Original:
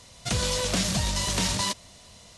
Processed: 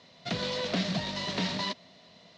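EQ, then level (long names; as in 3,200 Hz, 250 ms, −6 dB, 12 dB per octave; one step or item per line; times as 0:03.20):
loudspeaker in its box 170–4,600 Hz, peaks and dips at 170 Hz +9 dB, 260 Hz +6 dB, 400 Hz +4 dB, 650 Hz +6 dB, 1,900 Hz +4 dB, 4,000 Hz +4 dB
−5.5 dB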